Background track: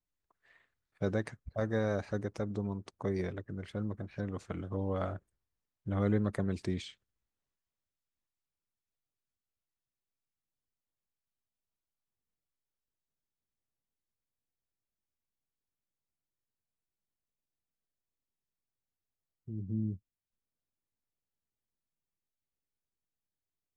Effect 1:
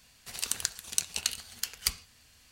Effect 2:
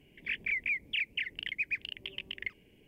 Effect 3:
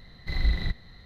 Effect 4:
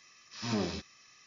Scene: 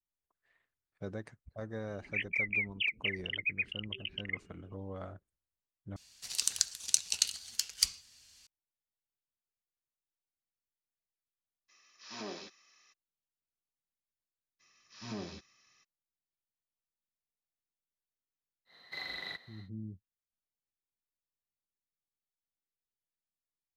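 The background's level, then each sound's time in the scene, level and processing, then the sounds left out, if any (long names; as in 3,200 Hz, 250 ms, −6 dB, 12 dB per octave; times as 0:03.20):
background track −9 dB
0:01.87: mix in 2 + expanding power law on the bin magnitudes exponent 2
0:05.96: overwrite with 1 −11 dB + parametric band 5,600 Hz +14.5 dB 2 octaves
0:11.68: mix in 4 −6.5 dB, fades 0.02 s + high-pass filter 340 Hz
0:14.59: mix in 4 −9 dB, fades 0.02 s
0:18.65: mix in 3 −3 dB, fades 0.10 s + high-pass filter 570 Hz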